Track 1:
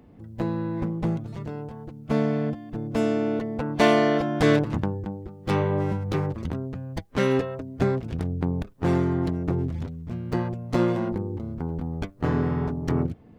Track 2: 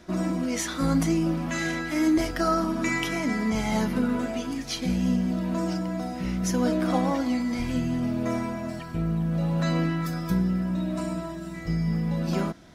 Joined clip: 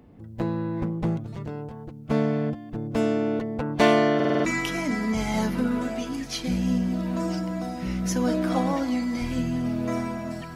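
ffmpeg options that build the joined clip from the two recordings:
ffmpeg -i cue0.wav -i cue1.wav -filter_complex "[0:a]apad=whole_dur=10.55,atrim=end=10.55,asplit=6[link_01][link_02][link_03][link_04][link_05][link_06];[link_01]atrim=end=4.202[link_07];[link_02]atrim=start=4.148:end=4.202[link_08];[link_03]atrim=start=4.148:end=4.202[link_09];[link_04]atrim=start=4.148:end=4.202[link_10];[link_05]atrim=start=4.148:end=4.202[link_11];[link_06]atrim=start=4.148:end=4.202[link_12];[1:a]atrim=start=2.828:end=8.93[link_13];[link_07][link_08]acrossfade=duration=0.004:curve1=hsin:curve2=hsin[link_14];[link_14][link_09]acrossfade=duration=0.004:curve1=hsin:curve2=hsin[link_15];[link_15][link_10]acrossfade=duration=0.004:curve1=hsin:curve2=hsin[link_16];[link_16][link_11]acrossfade=duration=0.004:curve1=hsin:curve2=hsin[link_17];[link_17][link_12]acrossfade=duration=0.004:curve1=hsin:curve2=hsin[link_18];[link_18][link_13]acrossfade=duration=0.004:curve1=hsin:curve2=hsin" out.wav

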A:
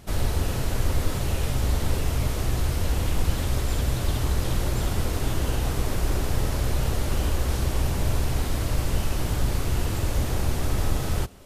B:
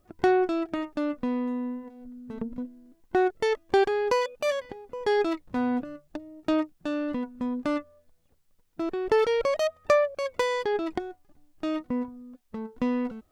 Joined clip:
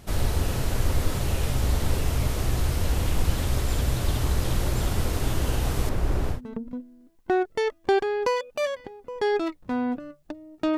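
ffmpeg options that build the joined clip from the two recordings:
ffmpeg -i cue0.wav -i cue1.wav -filter_complex "[0:a]asettb=1/sr,asplit=3[link_01][link_02][link_03];[link_01]atrim=end=5.894[link_04];[link_02]atrim=start=5.89:end=6.41,asetpts=PTS-STARTPTS,afade=type=in:duration=0.004:curve=qsin,afade=type=out:start_time=0.516:duration=0.004:curve=qsin,highshelf=frequency=2900:gain=-11[link_05];[link_03]atrim=start=6.406[link_06];[link_04][link_05]acrossfade=duration=0.004:curve1=hsin:curve2=qsin[link_07];[link_07][link_06]acrossfade=duration=0.004:curve1=qsin:curve2=hsin,apad=whole_dur=10.77,atrim=end=10.77,atrim=end=6.41,asetpts=PTS-STARTPTS[link_08];[1:a]atrim=start=2.14:end=6.62,asetpts=PTS-STARTPTS[link_09];[link_08][link_09]acrossfade=duration=0.12:curve1=tri:curve2=tri" out.wav

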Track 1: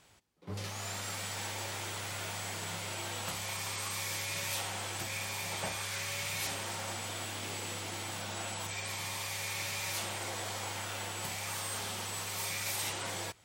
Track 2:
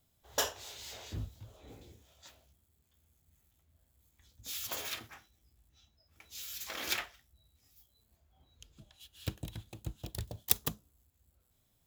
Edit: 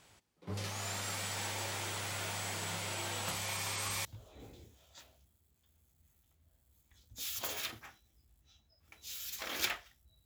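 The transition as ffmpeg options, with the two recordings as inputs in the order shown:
ffmpeg -i cue0.wav -i cue1.wav -filter_complex "[1:a]asplit=2[link_01][link_02];[0:a]apad=whole_dur=10.25,atrim=end=10.25,atrim=end=4.052[link_03];[link_02]atrim=start=1.328:end=7.53[link_04];[link_01]atrim=start=0.81:end=1.33,asetpts=PTS-STARTPTS,volume=-17.5dB,afade=type=in:duration=0.004:curve=hsin,afade=type=out:start_time=0.516:duration=0.004:curve=hsin,adelay=155673S[link_05];[link_03][link_04]acrossfade=duration=0.004:curve1=hsin:curve2=hsin[link_06];[link_06][link_05]amix=inputs=2:normalize=0" out.wav

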